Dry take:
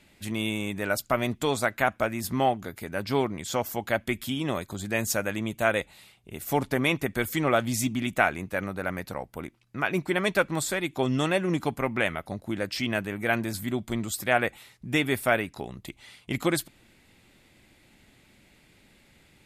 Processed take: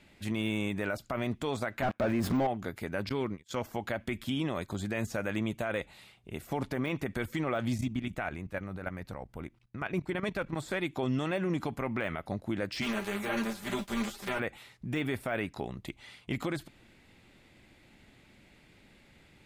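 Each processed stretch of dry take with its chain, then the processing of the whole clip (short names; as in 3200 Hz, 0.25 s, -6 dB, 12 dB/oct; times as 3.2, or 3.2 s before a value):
1.82–2.47 low shelf 120 Hz -8.5 dB + sample leveller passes 5
3.09–3.62 gate -34 dBFS, range -37 dB + bell 720 Hz -10 dB 0.54 oct
7.78–10.56 level quantiser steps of 14 dB + low shelf 110 Hz +11 dB
12.81–14.38 spectral contrast lowered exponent 0.44 + comb 5 ms, depth 71% + ensemble effect
whole clip: de-esser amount 75%; high shelf 6700 Hz -10.5 dB; limiter -22.5 dBFS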